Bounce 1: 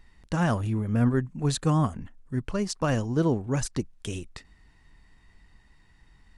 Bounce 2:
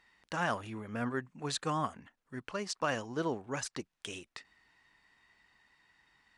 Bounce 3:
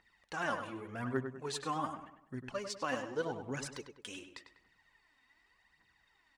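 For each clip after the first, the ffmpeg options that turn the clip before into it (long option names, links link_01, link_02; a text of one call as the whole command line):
ffmpeg -i in.wav -af "highpass=frequency=1300:poles=1,aemphasis=mode=reproduction:type=50kf,volume=2dB" out.wav
ffmpeg -i in.wav -filter_complex "[0:a]aphaser=in_gain=1:out_gain=1:delay=4.1:decay=0.62:speed=0.86:type=triangular,asplit=2[link_01][link_02];[link_02]adelay=99,lowpass=frequency=2800:poles=1,volume=-7.5dB,asplit=2[link_03][link_04];[link_04]adelay=99,lowpass=frequency=2800:poles=1,volume=0.43,asplit=2[link_05][link_06];[link_06]adelay=99,lowpass=frequency=2800:poles=1,volume=0.43,asplit=2[link_07][link_08];[link_08]adelay=99,lowpass=frequency=2800:poles=1,volume=0.43,asplit=2[link_09][link_10];[link_10]adelay=99,lowpass=frequency=2800:poles=1,volume=0.43[link_11];[link_03][link_05][link_07][link_09][link_11]amix=inputs=5:normalize=0[link_12];[link_01][link_12]amix=inputs=2:normalize=0,volume=-5.5dB" out.wav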